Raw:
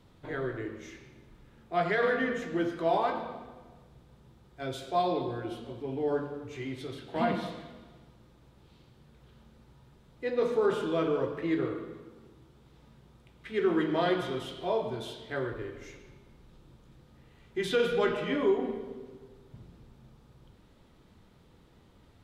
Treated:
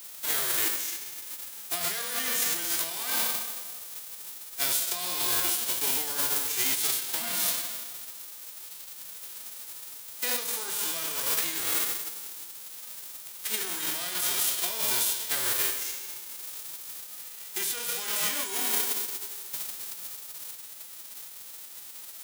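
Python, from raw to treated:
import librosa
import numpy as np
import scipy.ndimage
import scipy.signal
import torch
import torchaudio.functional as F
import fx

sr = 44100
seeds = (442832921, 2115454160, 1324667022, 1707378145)

y = fx.envelope_flatten(x, sr, power=0.3)
y = fx.riaa(y, sr, side='recording')
y = fx.over_compress(y, sr, threshold_db=-29.0, ratio=-1.0)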